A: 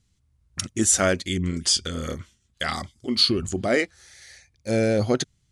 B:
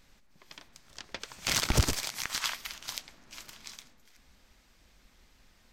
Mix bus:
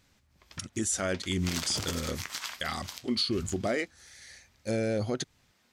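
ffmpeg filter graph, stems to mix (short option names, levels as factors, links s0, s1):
-filter_complex "[0:a]volume=0.708[s0];[1:a]highpass=130,flanger=delay=6.6:depth=5.9:regen=68:speed=1.5:shape=sinusoidal,volume=1.12[s1];[s0][s1]amix=inputs=2:normalize=0,alimiter=limit=0.106:level=0:latency=1:release=179"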